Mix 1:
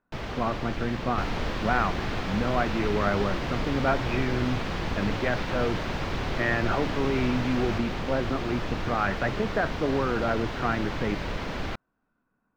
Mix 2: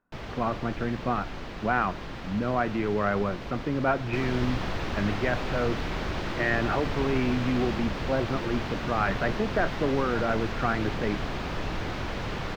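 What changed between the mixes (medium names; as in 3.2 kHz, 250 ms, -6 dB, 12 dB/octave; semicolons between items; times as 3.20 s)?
first sound -4.0 dB; second sound: entry +2.95 s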